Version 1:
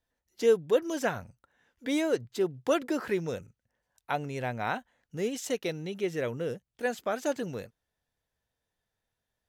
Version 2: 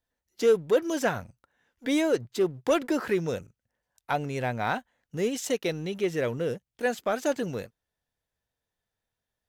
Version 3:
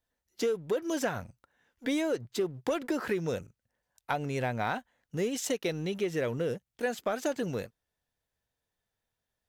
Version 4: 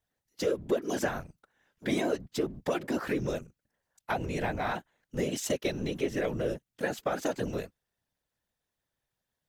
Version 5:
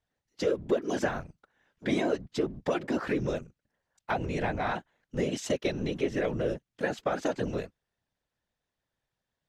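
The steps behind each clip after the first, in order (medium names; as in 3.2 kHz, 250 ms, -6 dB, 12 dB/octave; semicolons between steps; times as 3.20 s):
waveshaping leveller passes 1
compression 12:1, threshold -26 dBFS, peak gain reduction 10 dB
whisper effect
distance through air 69 m; trim +1.5 dB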